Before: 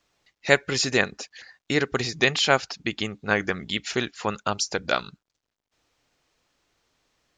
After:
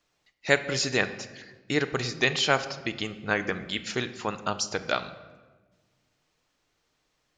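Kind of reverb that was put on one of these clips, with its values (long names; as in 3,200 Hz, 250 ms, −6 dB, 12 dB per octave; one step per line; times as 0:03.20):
rectangular room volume 990 cubic metres, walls mixed, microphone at 0.48 metres
level −3.5 dB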